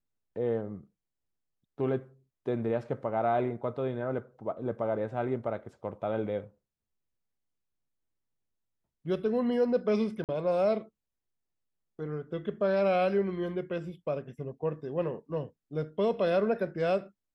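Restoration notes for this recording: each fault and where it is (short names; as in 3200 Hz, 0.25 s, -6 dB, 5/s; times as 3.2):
10.24–10.29 gap 48 ms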